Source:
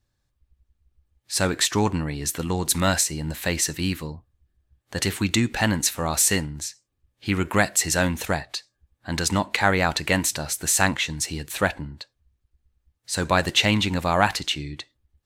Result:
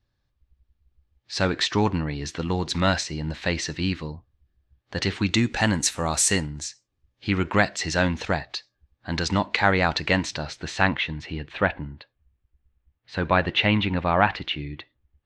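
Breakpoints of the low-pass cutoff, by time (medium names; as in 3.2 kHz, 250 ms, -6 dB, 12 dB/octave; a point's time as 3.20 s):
low-pass 24 dB/octave
5.16 s 5.1 kHz
5.78 s 9 kHz
6.29 s 9 kHz
7.39 s 5.3 kHz
10.18 s 5.3 kHz
11.17 s 3.2 kHz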